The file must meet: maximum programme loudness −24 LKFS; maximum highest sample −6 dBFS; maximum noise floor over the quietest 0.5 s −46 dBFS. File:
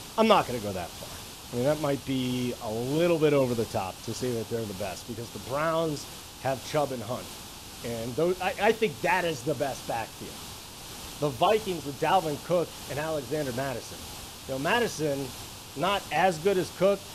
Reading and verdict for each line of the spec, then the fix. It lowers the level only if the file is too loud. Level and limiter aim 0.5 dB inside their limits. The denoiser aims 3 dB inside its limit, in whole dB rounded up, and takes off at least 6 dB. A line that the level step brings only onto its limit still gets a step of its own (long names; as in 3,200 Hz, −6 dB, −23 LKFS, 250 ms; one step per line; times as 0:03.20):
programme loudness −28.5 LKFS: in spec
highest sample −7.5 dBFS: in spec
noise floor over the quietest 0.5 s −43 dBFS: out of spec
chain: broadband denoise 6 dB, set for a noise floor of −43 dBFS